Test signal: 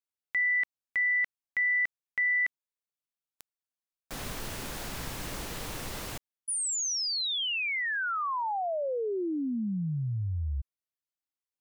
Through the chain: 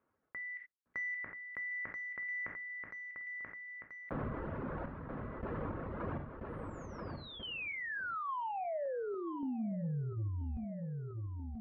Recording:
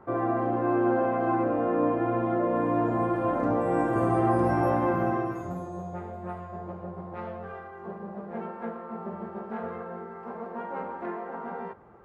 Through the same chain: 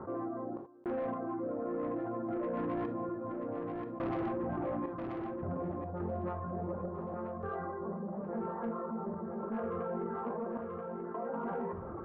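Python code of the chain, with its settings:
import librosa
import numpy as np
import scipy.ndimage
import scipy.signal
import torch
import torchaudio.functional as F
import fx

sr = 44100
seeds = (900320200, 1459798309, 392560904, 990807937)

p1 = scipy.signal.sosfilt(scipy.signal.butter(4, 1300.0, 'lowpass', fs=sr, output='sos'), x)
p2 = fx.hum_notches(p1, sr, base_hz=60, count=5)
p3 = fx.dereverb_blind(p2, sr, rt60_s=0.97)
p4 = scipy.signal.sosfilt(scipy.signal.butter(2, 54.0, 'highpass', fs=sr, output='sos'), p3)
p5 = fx.peak_eq(p4, sr, hz=790.0, db=-7.5, octaves=0.56)
p6 = fx.rider(p5, sr, range_db=4, speed_s=0.5)
p7 = p5 + (p6 * librosa.db_to_amplitude(-1.5))
p8 = fx.tremolo_random(p7, sr, seeds[0], hz=3.5, depth_pct=100)
p9 = 10.0 ** (-27.5 / 20.0) * np.tanh(p8 / 10.0 ** (-27.5 / 20.0))
p10 = fx.echo_feedback(p9, sr, ms=983, feedback_pct=27, wet_db=-14.5)
p11 = fx.rev_gated(p10, sr, seeds[1], gate_ms=100, shape='falling', drr_db=10.0)
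p12 = fx.env_flatten(p11, sr, amount_pct=70)
y = p12 * librosa.db_to_amplitude(-5.5)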